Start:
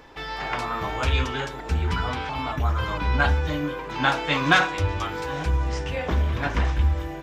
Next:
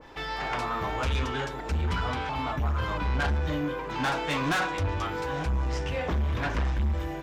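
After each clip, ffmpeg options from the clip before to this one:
ffmpeg -i in.wav -af "asoftclip=type=tanh:threshold=-22.5dB,adynamicequalizer=threshold=0.0126:dfrequency=1700:dqfactor=0.7:tfrequency=1700:tqfactor=0.7:attack=5:release=100:ratio=0.375:range=1.5:mode=cutabove:tftype=highshelf" out.wav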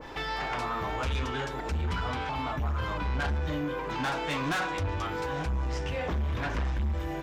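ffmpeg -i in.wav -af "alimiter=level_in=7.5dB:limit=-24dB:level=0:latency=1:release=479,volume=-7.5dB,volume=6dB" out.wav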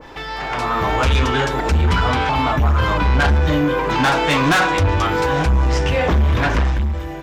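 ffmpeg -i in.wav -af "dynaudnorm=framelen=140:gausssize=9:maxgain=10.5dB,volume=4dB" out.wav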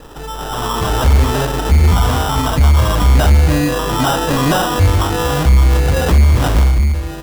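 ffmpeg -i in.wav -af "lowshelf=frequency=160:gain=7.5,acrusher=samples=20:mix=1:aa=0.000001" out.wav

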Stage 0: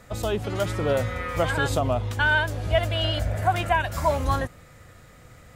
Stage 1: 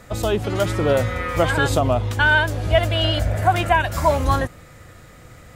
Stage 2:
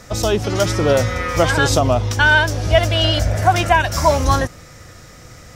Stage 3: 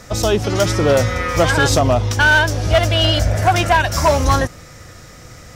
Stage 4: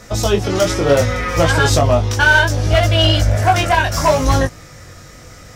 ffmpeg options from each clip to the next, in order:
ffmpeg -i in.wav -af "equalizer=frequency=330:width=5.2:gain=3.5,volume=5dB" out.wav
ffmpeg -i in.wav -af "equalizer=frequency=5600:width_type=o:width=0.49:gain=13.5,volume=3dB" out.wav
ffmpeg -i in.wav -af "asoftclip=type=hard:threshold=-9dB,volume=1.5dB" out.wav
ffmpeg -i in.wav -af "flanger=delay=18.5:depth=3.4:speed=0.68,volume=3.5dB" out.wav

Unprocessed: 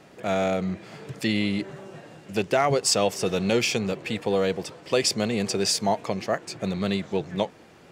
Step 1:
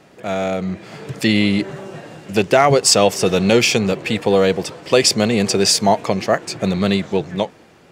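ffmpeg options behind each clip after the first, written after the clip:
ffmpeg -i in.wav -af "dynaudnorm=framelen=200:gausssize=9:maxgain=7.5dB,volume=2.5dB" out.wav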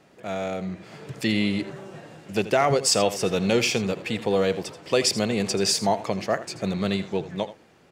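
ffmpeg -i in.wav -af "aecho=1:1:82:0.188,volume=-8dB" out.wav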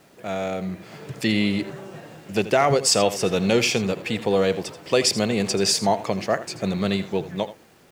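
ffmpeg -i in.wav -af "acrusher=bits=9:mix=0:aa=0.000001,volume=2dB" out.wav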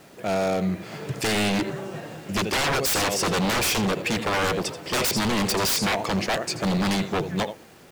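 ffmpeg -i in.wav -af "aeval=exprs='0.075*(abs(mod(val(0)/0.075+3,4)-2)-1)':channel_layout=same,volume=4.5dB" out.wav

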